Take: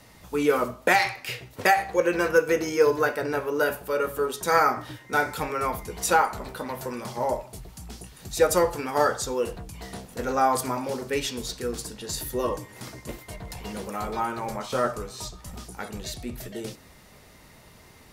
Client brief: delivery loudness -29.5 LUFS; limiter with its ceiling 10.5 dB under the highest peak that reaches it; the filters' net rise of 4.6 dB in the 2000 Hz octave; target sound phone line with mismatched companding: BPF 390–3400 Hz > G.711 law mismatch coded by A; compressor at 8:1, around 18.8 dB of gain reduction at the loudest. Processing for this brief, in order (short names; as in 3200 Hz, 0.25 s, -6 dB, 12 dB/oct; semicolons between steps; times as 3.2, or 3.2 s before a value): bell 2000 Hz +6.5 dB; compressor 8:1, threshold -33 dBFS; limiter -28 dBFS; BPF 390–3400 Hz; G.711 law mismatch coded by A; gain +15 dB